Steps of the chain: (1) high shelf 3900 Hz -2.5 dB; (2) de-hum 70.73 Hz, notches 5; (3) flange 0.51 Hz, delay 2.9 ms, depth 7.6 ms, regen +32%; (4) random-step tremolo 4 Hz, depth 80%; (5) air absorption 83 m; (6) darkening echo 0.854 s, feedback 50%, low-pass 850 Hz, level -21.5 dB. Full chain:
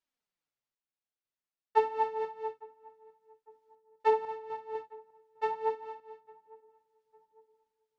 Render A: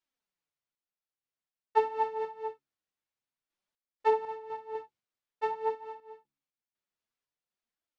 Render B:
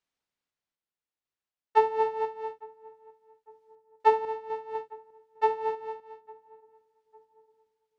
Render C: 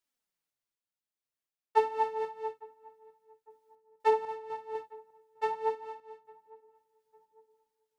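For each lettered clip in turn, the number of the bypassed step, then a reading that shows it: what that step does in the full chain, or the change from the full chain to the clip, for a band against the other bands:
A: 6, echo-to-direct -26.0 dB to none; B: 3, loudness change +4.0 LU; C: 5, 4 kHz band +2.0 dB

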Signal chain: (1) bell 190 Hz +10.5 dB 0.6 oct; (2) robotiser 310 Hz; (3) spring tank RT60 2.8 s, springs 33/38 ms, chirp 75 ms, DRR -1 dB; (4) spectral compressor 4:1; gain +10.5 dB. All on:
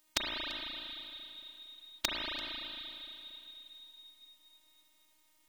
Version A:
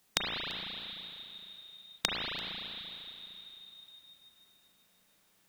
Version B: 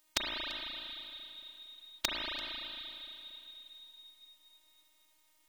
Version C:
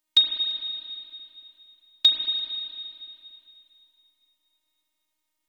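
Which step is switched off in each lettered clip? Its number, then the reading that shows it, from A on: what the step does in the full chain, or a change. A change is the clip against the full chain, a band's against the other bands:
2, 125 Hz band +6.0 dB; 1, 250 Hz band -1.5 dB; 4, crest factor change -13.5 dB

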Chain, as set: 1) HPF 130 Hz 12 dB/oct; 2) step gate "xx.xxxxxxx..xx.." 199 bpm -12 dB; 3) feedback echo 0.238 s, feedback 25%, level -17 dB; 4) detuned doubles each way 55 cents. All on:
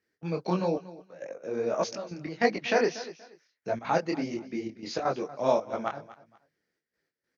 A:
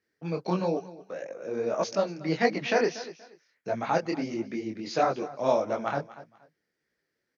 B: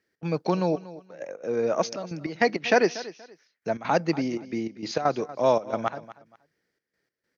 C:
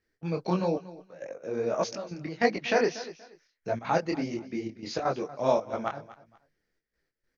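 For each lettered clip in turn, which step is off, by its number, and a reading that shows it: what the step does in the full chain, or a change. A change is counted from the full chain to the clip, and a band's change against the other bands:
2, momentary loudness spread change -1 LU; 4, crest factor change -3.0 dB; 1, 125 Hz band +1.5 dB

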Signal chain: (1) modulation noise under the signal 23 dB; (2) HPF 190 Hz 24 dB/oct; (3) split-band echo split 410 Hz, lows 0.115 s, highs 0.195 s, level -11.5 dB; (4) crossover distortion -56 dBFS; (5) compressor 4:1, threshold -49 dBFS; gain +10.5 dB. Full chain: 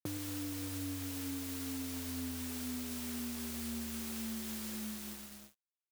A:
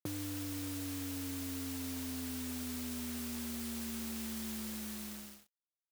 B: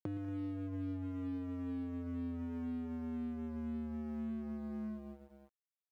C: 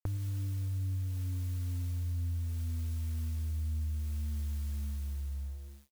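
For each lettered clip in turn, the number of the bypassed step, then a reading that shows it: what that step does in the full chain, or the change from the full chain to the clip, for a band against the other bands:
3, momentary loudness spread change -1 LU; 1, 2 kHz band -12.5 dB; 2, 125 Hz band +25.5 dB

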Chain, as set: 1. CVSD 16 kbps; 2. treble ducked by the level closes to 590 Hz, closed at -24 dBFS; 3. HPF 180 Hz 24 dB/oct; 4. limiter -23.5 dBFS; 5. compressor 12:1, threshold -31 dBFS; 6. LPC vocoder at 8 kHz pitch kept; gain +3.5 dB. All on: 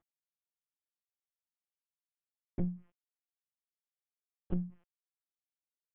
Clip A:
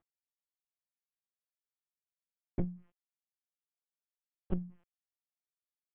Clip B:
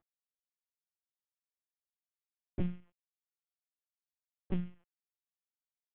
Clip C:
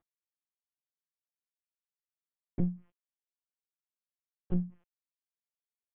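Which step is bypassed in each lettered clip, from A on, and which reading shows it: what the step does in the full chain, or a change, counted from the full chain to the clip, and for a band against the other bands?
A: 4, crest factor change +2.5 dB; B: 2, 1 kHz band +3.5 dB; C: 5, mean gain reduction 2.0 dB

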